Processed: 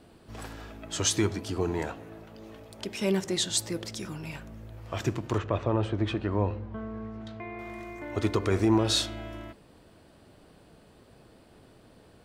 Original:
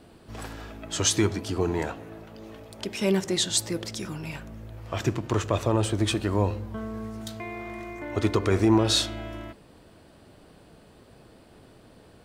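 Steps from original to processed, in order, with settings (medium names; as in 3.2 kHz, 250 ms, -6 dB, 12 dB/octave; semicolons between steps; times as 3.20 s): 5.38–7.59 s: low-pass 2.6 kHz 12 dB/octave; trim -3 dB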